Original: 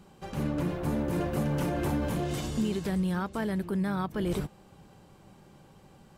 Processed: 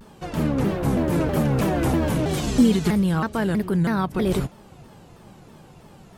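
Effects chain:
0:02.47–0:02.90: comb filter 4.2 ms, depth 100%
pitch modulation by a square or saw wave saw down 3.1 Hz, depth 250 cents
level +8 dB

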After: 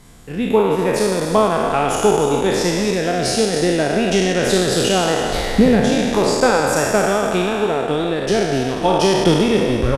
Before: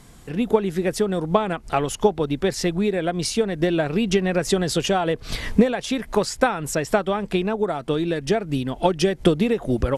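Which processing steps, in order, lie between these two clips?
peak hold with a decay on every bin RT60 2.18 s
transient designer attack 0 dB, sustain −6 dB
echo with shifted repeats 283 ms, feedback 37%, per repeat +51 Hz, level −11 dB

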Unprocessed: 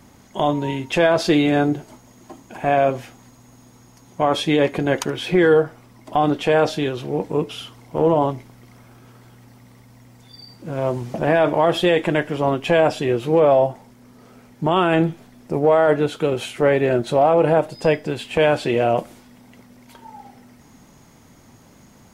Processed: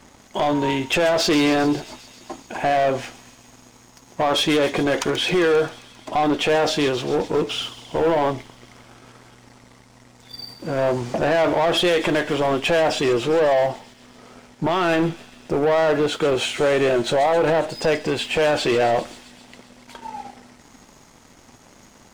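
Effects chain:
low-pass filter 8,700 Hz 24 dB per octave
parametric band 130 Hz −8 dB 2 octaves
brickwall limiter −13 dBFS, peak gain reduction 8 dB
leveller curve on the samples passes 2
on a send: delay with a high-pass on its return 133 ms, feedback 73%, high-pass 4,200 Hz, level −10 dB

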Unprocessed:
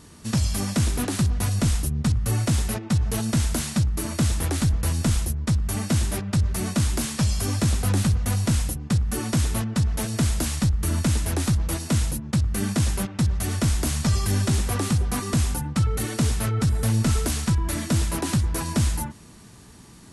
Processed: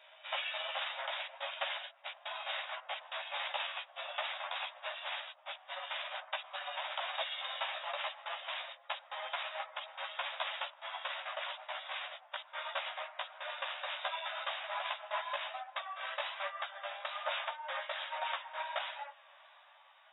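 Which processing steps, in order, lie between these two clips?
pitch glide at a constant tempo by −11 semitones ending unshifted
linear-phase brick-wall band-pass 540–3,800 Hz
multi-voice chorus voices 6, 1.2 Hz, delay 14 ms, depth 3.4 ms
level +1 dB

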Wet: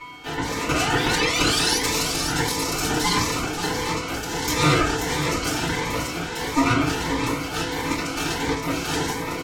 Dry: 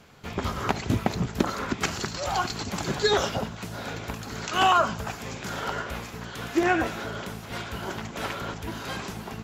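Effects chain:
dynamic equaliser 6,200 Hz, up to +6 dB, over −50 dBFS, Q 1.8
in parallel at 0 dB: compressor whose output falls as the input rises −32 dBFS, ratio −0.5
on the sum: steady tone 1,600 Hz −31 dBFS
notch comb filter 1,400 Hz
sound drawn into the spectrogram rise, 0:00.73–0:01.78, 1,200–5,500 Hz −25 dBFS
ring modulation 610 Hz
harmonic generator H 8 −10 dB, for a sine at −5 dBFS
single-tap delay 534 ms −7.5 dB
feedback delay network reverb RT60 0.34 s, low-frequency decay 1.2×, high-frequency decay 0.7×, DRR −9 dB
phaser whose notches keep moving one way rising 1.5 Hz
level −7 dB

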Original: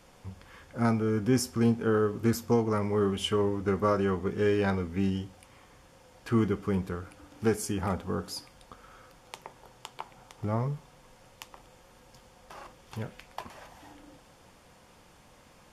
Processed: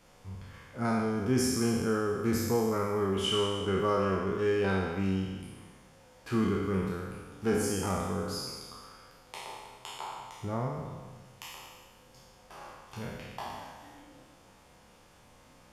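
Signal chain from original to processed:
peak hold with a decay on every bin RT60 1.59 s
flutter between parallel walls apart 5.4 metres, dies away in 0.23 s
level −5 dB

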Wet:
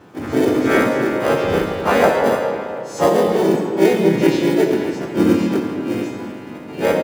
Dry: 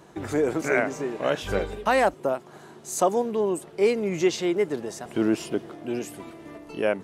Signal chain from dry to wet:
every partial snapped to a pitch grid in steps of 2 semitones
head-to-tape spacing loss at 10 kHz 33 dB
in parallel at −9 dB: decimation without filtering 33×
on the sum: high-pass filter 83 Hz 12 dB per octave
on a send: feedback echo with a high-pass in the loop 141 ms, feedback 34%, high-pass 150 Hz, level −18.5 dB
on the sum: comb and all-pass reverb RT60 2.3 s, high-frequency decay 0.65×, pre-delay 10 ms, DRR 1.5 dB
pitch-shifted copies added −7 semitones −17 dB, −3 semitones −1 dB, +7 semitones −11 dB
level +4.5 dB

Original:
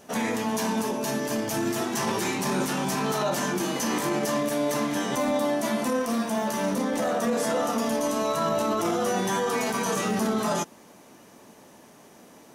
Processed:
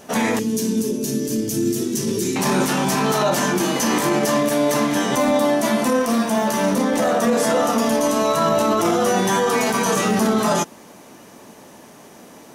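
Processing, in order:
0:00.39–0:02.36: drawn EQ curve 430 Hz 0 dB, 750 Hz −27 dB, 6,200 Hz −1 dB
level +7.5 dB

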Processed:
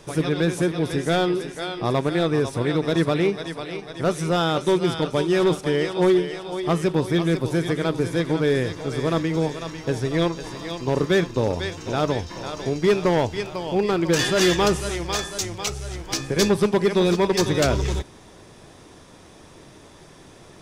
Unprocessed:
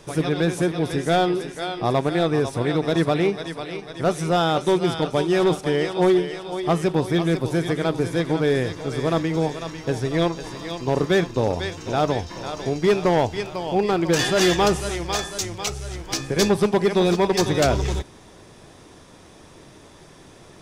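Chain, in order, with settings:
dynamic equaliser 740 Hz, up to −6 dB, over −38 dBFS, Q 4

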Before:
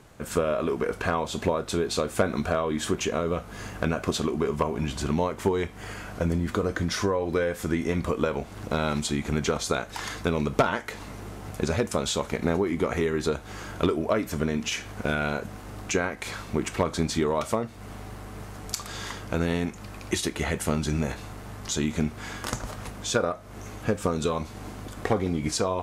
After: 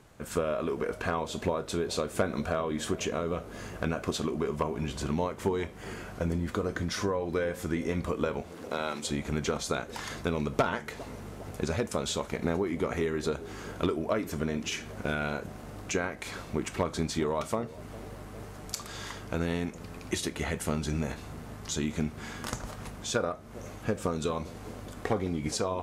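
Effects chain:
0:08.41–0:09.07: high-pass filter 330 Hz 12 dB per octave
bucket-brigade delay 405 ms, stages 2,048, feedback 72%, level −17 dB
level −4.5 dB

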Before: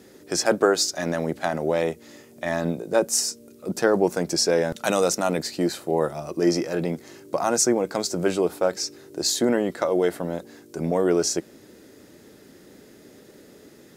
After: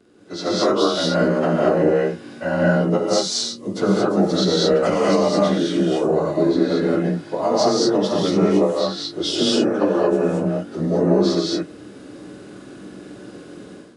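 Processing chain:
partials spread apart or drawn together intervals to 91%
high-shelf EQ 2,300 Hz −9.5 dB
downward compressor, threshold −25 dBFS, peak gain reduction 9 dB
reverb whose tail is shaped and stops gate 250 ms rising, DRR −4.5 dB
automatic gain control gain up to 12 dB
level −3 dB

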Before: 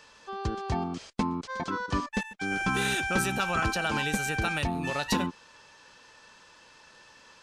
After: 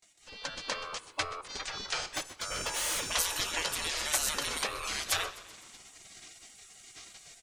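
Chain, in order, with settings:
automatic gain control gain up to 10 dB
gate on every frequency bin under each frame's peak −20 dB weak
noise gate with hold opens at −58 dBFS
in parallel at +3 dB: downward compressor, threshold −50 dBFS, peak gain reduction 24 dB
0:02.02–0:03.09: on the sum: hard clipping −27.5 dBFS, distortion −16 dB
echo with shifted repeats 127 ms, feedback 62%, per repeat −59 Hz, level −17 dB
on a send at −18 dB: convolution reverb RT60 0.75 s, pre-delay 3 ms
on the sum: level −1.5 dB

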